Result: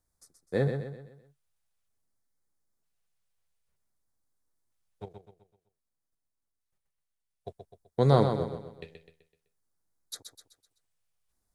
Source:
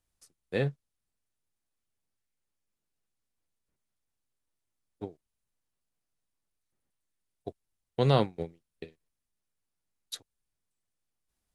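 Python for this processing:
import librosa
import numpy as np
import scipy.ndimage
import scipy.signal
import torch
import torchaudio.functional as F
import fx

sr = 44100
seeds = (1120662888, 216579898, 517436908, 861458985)

y = fx.level_steps(x, sr, step_db=9, at=(5.03, 7.49))
y = fx.filter_lfo_notch(y, sr, shape='square', hz=0.53, low_hz=280.0, high_hz=2800.0, q=0.96)
y = fx.echo_feedback(y, sr, ms=127, feedback_pct=43, wet_db=-7)
y = y * librosa.db_to_amplitude(2.0)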